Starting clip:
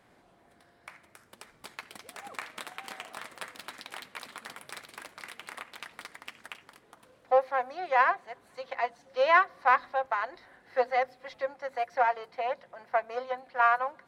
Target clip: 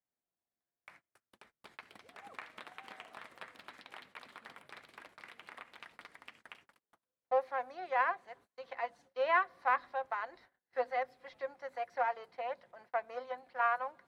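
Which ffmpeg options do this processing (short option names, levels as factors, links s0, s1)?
-filter_complex "[0:a]agate=range=0.0316:threshold=0.00251:ratio=16:detection=peak,acrossover=split=4000[s0][s1];[s1]acompressor=threshold=0.00112:ratio=4:attack=1:release=60[s2];[s0][s2]amix=inputs=2:normalize=0,volume=0.422"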